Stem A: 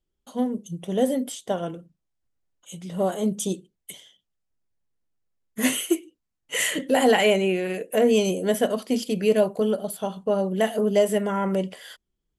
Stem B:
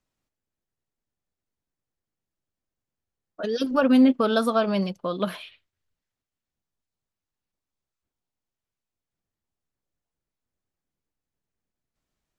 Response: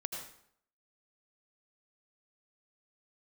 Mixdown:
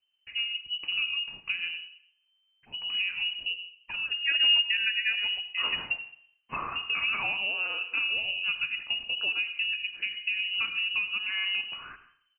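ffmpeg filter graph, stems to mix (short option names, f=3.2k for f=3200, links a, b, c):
-filter_complex "[0:a]acompressor=threshold=-32dB:ratio=4,volume=-1dB,asplit=2[a][b];[b]volume=-5dB[c];[1:a]aemphasis=mode=reproduction:type=75kf,adelay=500,volume=-8.5dB,asplit=2[d][e];[e]volume=-7.5dB[f];[2:a]atrim=start_sample=2205[g];[c][f]amix=inputs=2:normalize=0[h];[h][g]afir=irnorm=-1:irlink=0[i];[a][d][i]amix=inputs=3:normalize=0,lowpass=f=2.6k:t=q:w=0.5098,lowpass=f=2.6k:t=q:w=0.6013,lowpass=f=2.6k:t=q:w=0.9,lowpass=f=2.6k:t=q:w=2.563,afreqshift=-3100"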